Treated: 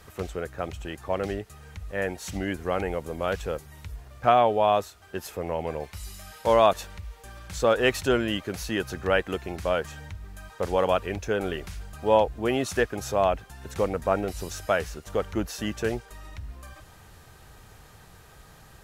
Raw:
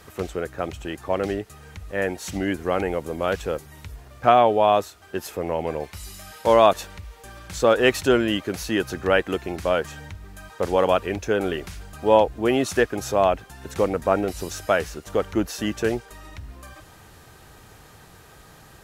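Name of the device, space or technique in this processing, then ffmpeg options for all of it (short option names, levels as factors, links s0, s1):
low shelf boost with a cut just above: -af "lowshelf=f=67:g=7.5,equalizer=f=310:t=o:w=0.69:g=-3.5,volume=0.668"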